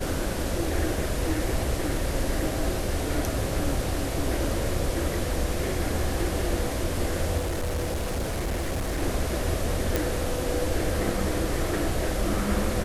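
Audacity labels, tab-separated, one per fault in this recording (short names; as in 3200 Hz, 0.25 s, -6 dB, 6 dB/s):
7.370000	9.030000	clipped -24.5 dBFS
9.960000	9.960000	pop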